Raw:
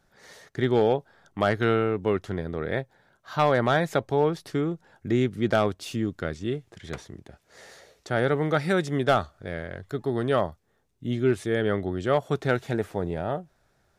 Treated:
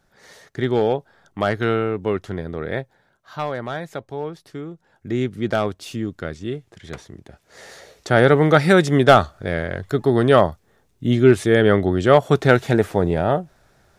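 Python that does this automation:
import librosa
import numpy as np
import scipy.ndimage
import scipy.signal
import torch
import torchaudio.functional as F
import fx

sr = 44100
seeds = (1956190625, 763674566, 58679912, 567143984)

y = fx.gain(x, sr, db=fx.line((2.81, 2.5), (3.6, -6.0), (4.71, -6.0), (5.23, 1.5), (7.02, 1.5), (8.11, 10.0)))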